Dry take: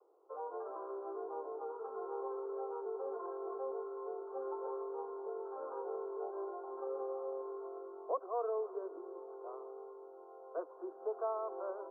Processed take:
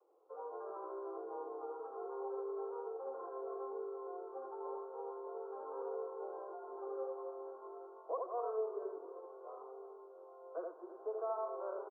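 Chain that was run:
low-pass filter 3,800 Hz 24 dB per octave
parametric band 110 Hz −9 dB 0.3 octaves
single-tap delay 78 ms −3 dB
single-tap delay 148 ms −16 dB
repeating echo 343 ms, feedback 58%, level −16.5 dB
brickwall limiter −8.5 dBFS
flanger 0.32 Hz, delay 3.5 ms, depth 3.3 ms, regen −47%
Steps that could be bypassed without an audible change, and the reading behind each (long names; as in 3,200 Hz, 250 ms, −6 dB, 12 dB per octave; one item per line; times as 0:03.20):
low-pass filter 3,800 Hz: nothing at its input above 1,400 Hz
parametric band 110 Hz: nothing at its input below 340 Hz
brickwall limiter −8.5 dBFS: peak of its input −23.5 dBFS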